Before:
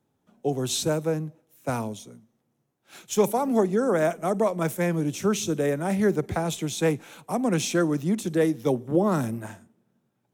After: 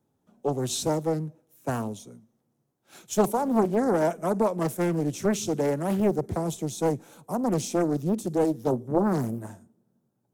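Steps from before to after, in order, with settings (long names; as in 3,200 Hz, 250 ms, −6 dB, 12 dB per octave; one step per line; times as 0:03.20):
parametric band 2,400 Hz −6 dB 1.8 octaves, from 0:06.00 −13.5 dB
highs frequency-modulated by the lows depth 0.53 ms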